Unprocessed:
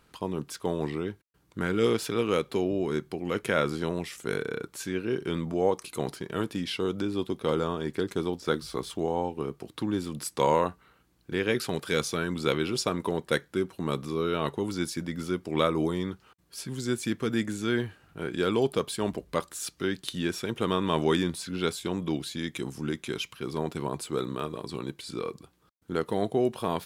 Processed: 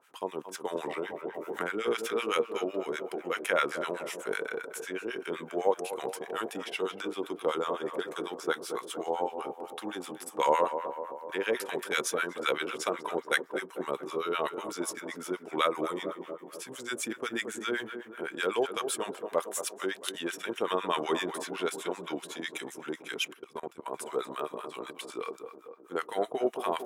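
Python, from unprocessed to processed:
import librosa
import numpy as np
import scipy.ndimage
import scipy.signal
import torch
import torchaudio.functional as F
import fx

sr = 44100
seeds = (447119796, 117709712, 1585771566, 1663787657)

y = scipy.signal.sosfilt(scipy.signal.butter(2, 540.0, 'highpass', fs=sr, output='sos'), x)
y = fx.echo_tape(y, sr, ms=225, feedback_pct=73, wet_db=-8, lp_hz=1500.0, drive_db=8.0, wow_cents=13)
y = fx.harmonic_tremolo(y, sr, hz=7.9, depth_pct=100, crossover_hz=980.0)
y = fx.level_steps(y, sr, step_db=21, at=(23.32, 23.92), fade=0.02)
y = fx.peak_eq(y, sr, hz=4400.0, db=-11.0, octaves=0.45)
y = fx.band_squash(y, sr, depth_pct=100, at=(0.75, 1.88))
y = F.gain(torch.from_numpy(y), 6.0).numpy()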